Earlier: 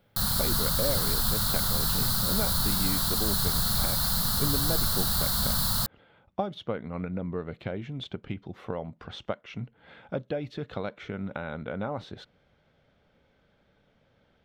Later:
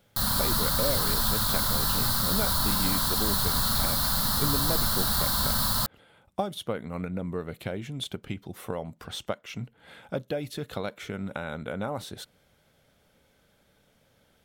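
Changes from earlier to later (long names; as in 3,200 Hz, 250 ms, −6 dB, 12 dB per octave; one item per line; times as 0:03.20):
speech: remove high-frequency loss of the air 210 metres
reverb: on, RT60 0.60 s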